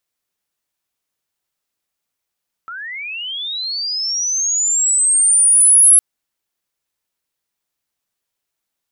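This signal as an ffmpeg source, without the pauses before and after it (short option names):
-f lavfi -i "aevalsrc='pow(10,(-27+22*t/3.31)/20)*sin(2*PI*(1300*t+9700*t*t/(2*3.31)))':d=3.31:s=44100"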